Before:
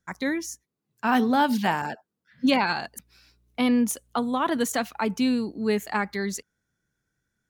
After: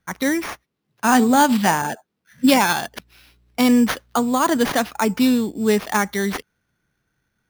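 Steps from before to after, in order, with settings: sample-rate reducer 7.8 kHz, jitter 0%; trim +6.5 dB

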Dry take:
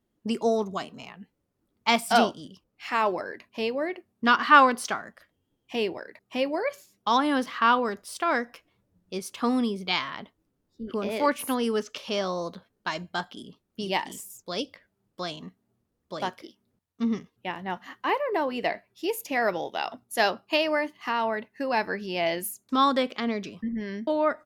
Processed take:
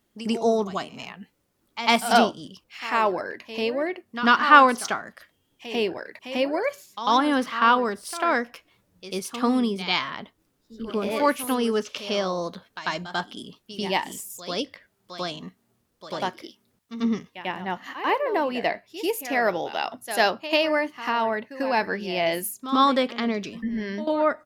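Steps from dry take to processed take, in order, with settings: pre-echo 94 ms -13 dB; tape noise reduction on one side only encoder only; trim +2.5 dB

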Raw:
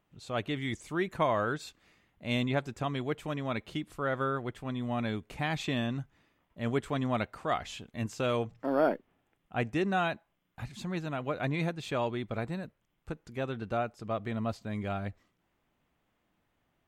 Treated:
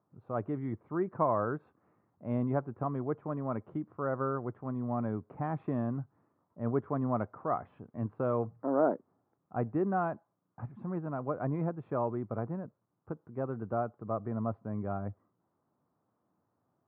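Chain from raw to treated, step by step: elliptic band-pass 100–1200 Hz, stop band 60 dB

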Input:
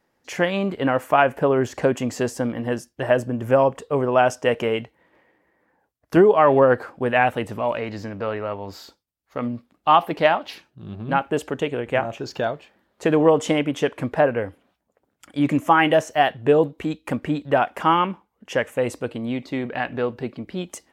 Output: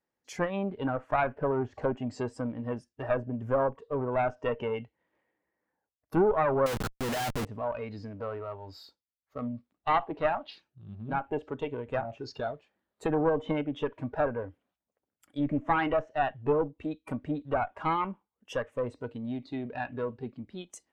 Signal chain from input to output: single-diode clipper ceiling -20.5 dBFS; low-pass that closes with the level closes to 2.3 kHz, closed at -20 dBFS; spectral noise reduction 11 dB; 6.66–7.45 s: Schmitt trigger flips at -36.5 dBFS; trim -6.5 dB

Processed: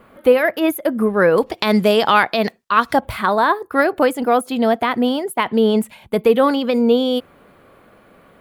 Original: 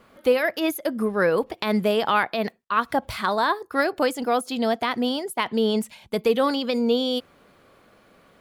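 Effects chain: peaking EQ 5.5 kHz -13 dB 1.3 oct, from 1.38 s +3 dB, from 3.00 s -12 dB; trim +7 dB

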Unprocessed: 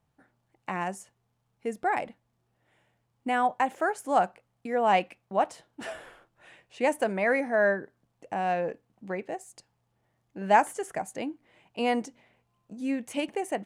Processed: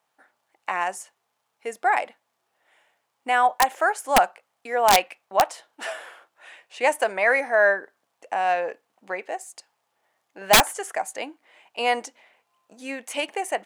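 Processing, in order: high-pass 660 Hz 12 dB/octave; integer overflow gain 15.5 dB; trim +8 dB

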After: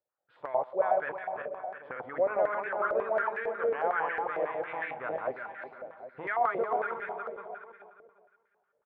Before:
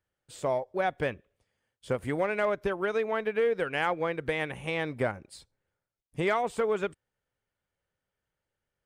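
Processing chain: backward echo that repeats 178 ms, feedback 46%, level -0.5 dB; recorder AGC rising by 5.6 dB/s; distance through air 420 m; multi-tap echo 131/361/503/781 ms -16/-10/-17/-15 dB; step-sequenced band-pass 11 Hz 600–1700 Hz; trim +6 dB

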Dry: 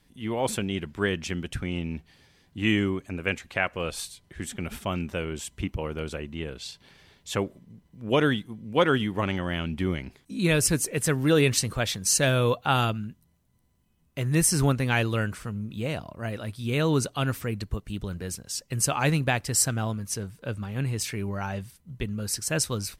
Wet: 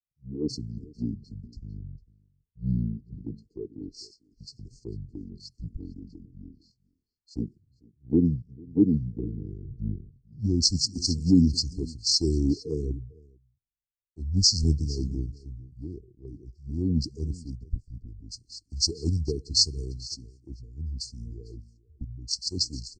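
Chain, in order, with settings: FFT band-reject 810–7200 Hz; pitch shift -9.5 st; on a send: delay 452 ms -13.5 dB; on the sum: three bands expanded up and down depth 100%; trim -4.5 dB

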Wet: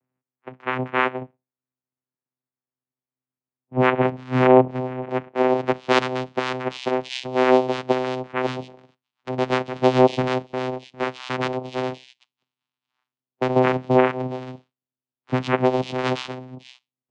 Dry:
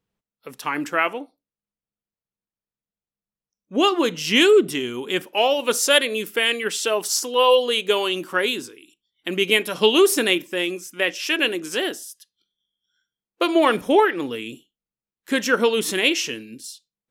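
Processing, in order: low-pass sweep 1.5 kHz -> 6.3 kHz, 5.33–6.70 s; vocoder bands 4, saw 128 Hz; three-band isolator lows -16 dB, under 160 Hz, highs -17 dB, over 4.3 kHz

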